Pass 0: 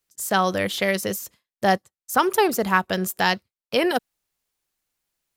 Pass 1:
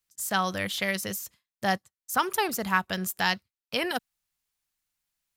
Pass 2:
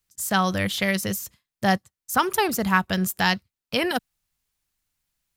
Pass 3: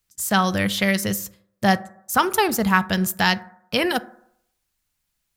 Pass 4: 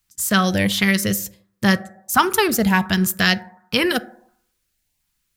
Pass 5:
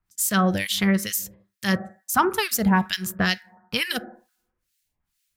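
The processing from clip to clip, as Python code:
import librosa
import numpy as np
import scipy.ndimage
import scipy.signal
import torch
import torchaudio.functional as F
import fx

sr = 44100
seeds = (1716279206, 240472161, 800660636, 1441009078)

y1 = fx.peak_eq(x, sr, hz=430.0, db=-8.5, octaves=1.7)
y1 = y1 * librosa.db_to_amplitude(-3.0)
y2 = fx.low_shelf(y1, sr, hz=230.0, db=9.0)
y2 = y2 * librosa.db_to_amplitude(3.5)
y3 = fx.rev_fdn(y2, sr, rt60_s=0.71, lf_ratio=0.85, hf_ratio=0.35, size_ms=28.0, drr_db=14.5)
y3 = y3 * librosa.db_to_amplitude(2.5)
y4 = fx.filter_lfo_notch(y3, sr, shape='saw_up', hz=1.4, low_hz=470.0, high_hz=1500.0, q=1.8)
y4 = y4 * librosa.db_to_amplitude(3.5)
y5 = fx.harmonic_tremolo(y4, sr, hz=2.2, depth_pct=100, crossover_hz=1700.0)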